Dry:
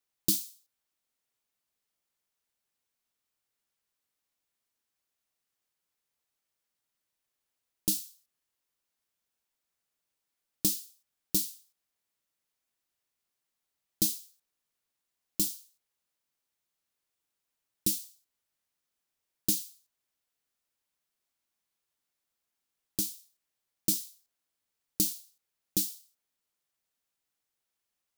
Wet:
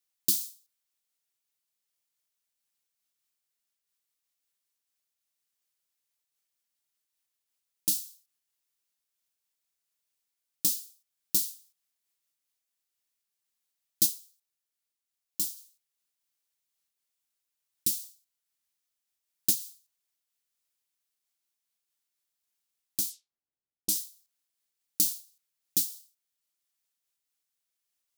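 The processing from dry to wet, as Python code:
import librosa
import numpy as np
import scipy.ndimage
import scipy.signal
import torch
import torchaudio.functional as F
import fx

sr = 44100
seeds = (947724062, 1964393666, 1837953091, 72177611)

y = fx.comb_fb(x, sr, f0_hz=450.0, decay_s=0.25, harmonics='odd', damping=0.0, mix_pct=40, at=(14.05, 15.56), fade=0.02)
y = fx.env_lowpass(y, sr, base_hz=450.0, full_db=-29.5, at=(23.09, 23.94), fade=0.02)
y = fx.high_shelf(y, sr, hz=2100.0, db=10.5)
y = fx.am_noise(y, sr, seeds[0], hz=5.7, depth_pct=55)
y = F.gain(torch.from_numpy(y), -5.0).numpy()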